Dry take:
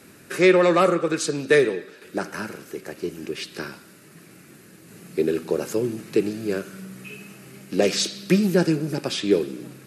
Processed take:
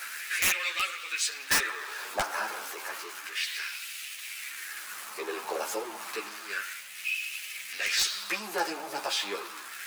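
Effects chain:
converter with a step at zero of −29.5 dBFS
auto-filter high-pass sine 0.31 Hz 790–2,600 Hz
wrap-around overflow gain 11.5 dB
string-ensemble chorus
level −1.5 dB

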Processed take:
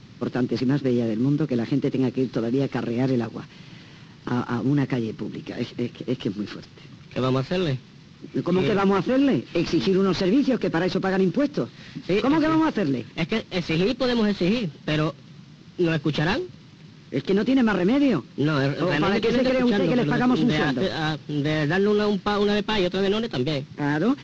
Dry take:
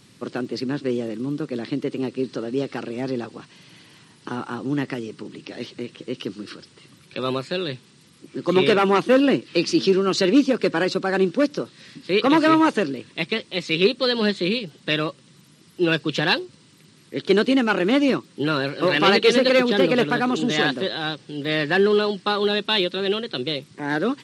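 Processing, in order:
variable-slope delta modulation 32 kbit/s
bass and treble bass +9 dB, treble −4 dB
brickwall limiter −14.5 dBFS, peak gain reduction 11 dB
level +1.5 dB

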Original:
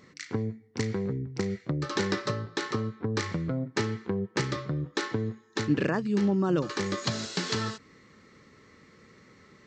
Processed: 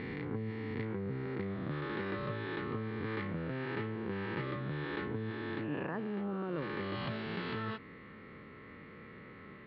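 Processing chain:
peak hold with a rise ahead of every peak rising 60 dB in 1.47 s
inverse Chebyshev low-pass filter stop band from 5,900 Hz, stop band 40 dB
reversed playback
downward compressor 4 to 1, threshold −39 dBFS, peak gain reduction 17 dB
reversed playback
level +1.5 dB

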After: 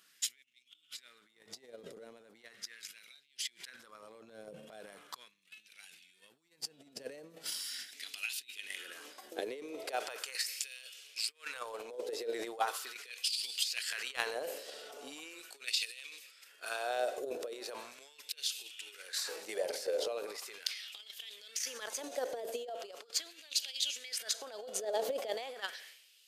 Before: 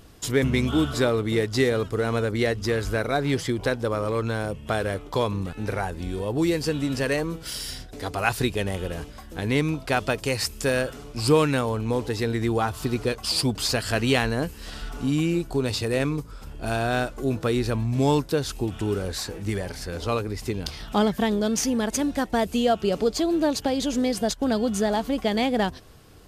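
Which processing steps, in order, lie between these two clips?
guitar amp tone stack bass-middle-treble 10-0-1
high-pass filter sweep 170 Hz → 480 Hz, 0:06.95–0:10.22
four-comb reverb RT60 1.4 s, combs from 33 ms, DRR 18.5 dB
compressor whose output falls as the input rises −49 dBFS, ratio −0.5
auto-filter high-pass sine 0.39 Hz 550–2,900 Hz
transient designer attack +6 dB, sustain +10 dB
level +7.5 dB

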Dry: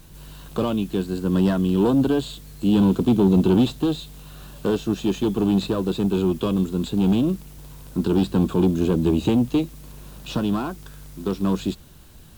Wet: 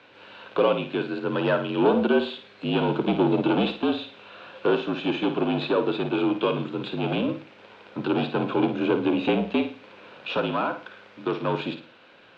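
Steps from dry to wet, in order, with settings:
frequency shifter −47 Hz
loudspeaker in its box 390–3,400 Hz, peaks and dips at 520 Hz +7 dB, 1,500 Hz +5 dB, 2,400 Hz +6 dB
flutter between parallel walls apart 9.3 metres, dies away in 0.38 s
level +3 dB

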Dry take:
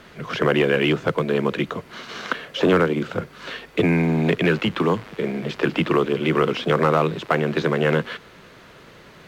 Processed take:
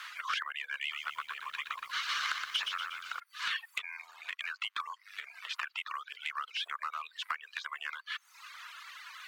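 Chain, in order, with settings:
reverb reduction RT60 0.86 s
downward compressor 16 to 1, threshold −33 dBFS, peak gain reduction 20 dB
Chebyshev high-pass filter 1,100 Hz, order 4
soft clipping −28 dBFS, distortion −17 dB
reverb reduction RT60 0.56 s
0:00.78–0:03.20: feedback echo at a low word length 120 ms, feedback 55%, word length 11 bits, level −4.5 dB
level +6 dB

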